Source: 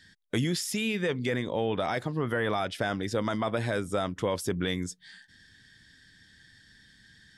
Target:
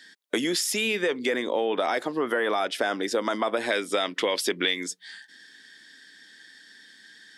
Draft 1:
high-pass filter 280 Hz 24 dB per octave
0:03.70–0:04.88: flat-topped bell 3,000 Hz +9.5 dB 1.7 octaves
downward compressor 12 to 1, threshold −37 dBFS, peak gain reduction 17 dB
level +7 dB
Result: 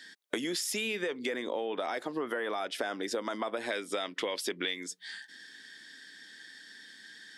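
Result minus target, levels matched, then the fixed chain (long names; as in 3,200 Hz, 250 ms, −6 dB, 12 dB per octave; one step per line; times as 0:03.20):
downward compressor: peak gain reduction +8.5 dB
high-pass filter 280 Hz 24 dB per octave
0:03.70–0:04.88: flat-topped bell 3,000 Hz +9.5 dB 1.7 octaves
downward compressor 12 to 1, threshold −27.5 dBFS, peak gain reduction 8.5 dB
level +7 dB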